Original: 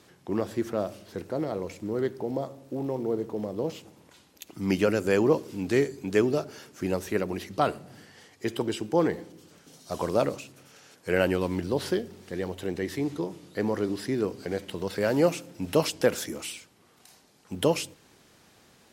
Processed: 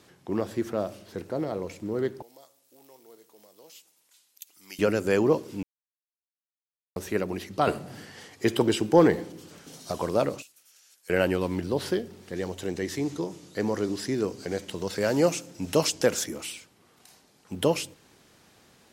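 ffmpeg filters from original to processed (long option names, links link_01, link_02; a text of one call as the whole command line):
ffmpeg -i in.wav -filter_complex "[0:a]asettb=1/sr,asplit=3[link_01][link_02][link_03];[link_01]atrim=end=2.224[link_04];[link_02]atrim=start=2.22:end=4.79,asetpts=PTS-STARTPTS,afade=type=in:duration=0.004:curve=qsin,afade=type=out:start_time=2.566:duration=0.004:curve=qsin,aderivative[link_05];[link_03]atrim=start=4.786[link_06];[link_04][link_05]acrossfade=duration=0.004:curve1=hsin:curve2=qsin[link_07];[link_07][link_06]acrossfade=duration=0.004:curve1=qsin:curve2=hsin,asettb=1/sr,asplit=3[link_08][link_09][link_10];[link_08]atrim=end=7.674[link_11];[link_09]atrim=start=7.67:end=9.92,asetpts=PTS-STARTPTS,afade=type=in:duration=0.004:curve=qsin,afade=type=out:start_time=2.246:duration=0.004:curve=qsin,acontrast=56[link_12];[link_10]atrim=start=9.916[link_13];[link_11][link_12]acrossfade=duration=0.004:curve1=hsin:curve2=qsin[link_14];[link_14][link_13]acrossfade=duration=0.004:curve1=qsin:curve2=hsin,asettb=1/sr,asplit=3[link_15][link_16][link_17];[link_15]atrim=end=10.424[link_18];[link_16]atrim=start=10.42:end=11.1,asetpts=PTS-STARTPTS,afade=type=in:duration=0.004:curve=qsin,afade=type=out:start_time=0.676:duration=0.004:curve=qsin,aderivative[link_19];[link_17]atrim=start=11.096[link_20];[link_18][link_19]acrossfade=duration=0.004:curve1=hsin:curve2=qsin[link_21];[link_21][link_20]acrossfade=duration=0.004:curve1=qsin:curve2=hsin,asettb=1/sr,asplit=3[link_22][link_23][link_24];[link_22]atrim=end=12.364[link_25];[link_23]atrim=start=12.36:end=16.24,asetpts=PTS-STARTPTS,afade=type=in:duration=0.004:curve=qsin,afade=type=out:start_time=3.876:duration=0.004:curve=qsin,equalizer=frequency=6500:width_type=o:width=0.88:gain=8[link_26];[link_24]atrim=start=16.236[link_27];[link_25][link_26]acrossfade=duration=0.004:curve1=hsin:curve2=qsin[link_28];[link_28][link_27]acrossfade=duration=0.004:curve1=qsin:curve2=hsin,asplit=3[link_29][link_30][link_31];[link_29]atrim=end=5.63,asetpts=PTS-STARTPTS,afade=type=out:start_time=5.626:duration=0.004:curve=hsin[link_32];[link_30]atrim=start=5.63:end=6.96,asetpts=PTS-STARTPTS,volume=0[link_33];[link_31]atrim=start=6.96,asetpts=PTS-STARTPTS,afade=type=in:duration=0.004:curve=hsin[link_34];[link_32][link_33][link_34]concat=n=3:v=0:a=1" out.wav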